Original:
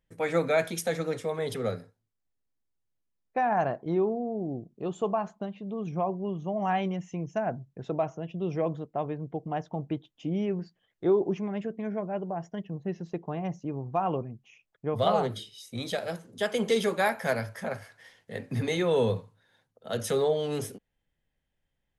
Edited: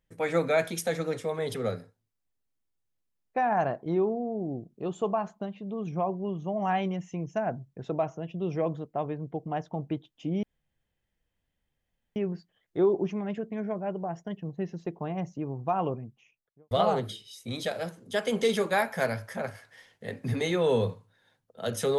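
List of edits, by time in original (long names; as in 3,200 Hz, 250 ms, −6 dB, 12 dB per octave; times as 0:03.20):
0:10.43: splice in room tone 1.73 s
0:14.25–0:14.98: fade out and dull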